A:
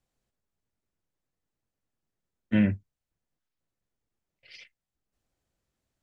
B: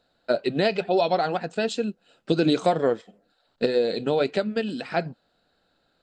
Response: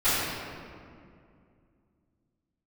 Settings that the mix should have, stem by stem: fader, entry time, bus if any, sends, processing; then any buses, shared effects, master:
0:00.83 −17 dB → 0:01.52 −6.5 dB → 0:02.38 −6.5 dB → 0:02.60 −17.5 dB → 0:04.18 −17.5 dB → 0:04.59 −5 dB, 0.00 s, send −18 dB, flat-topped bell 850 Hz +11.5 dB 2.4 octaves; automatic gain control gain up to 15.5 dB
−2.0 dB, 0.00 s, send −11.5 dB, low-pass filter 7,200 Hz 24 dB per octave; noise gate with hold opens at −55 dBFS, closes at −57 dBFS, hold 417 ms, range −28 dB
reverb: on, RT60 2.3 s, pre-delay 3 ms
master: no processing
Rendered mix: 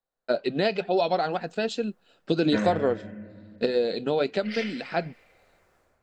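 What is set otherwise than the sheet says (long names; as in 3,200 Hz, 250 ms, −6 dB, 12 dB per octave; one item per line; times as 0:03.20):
stem B: send off
master: extra parametric band 120 Hz −4 dB 0.44 octaves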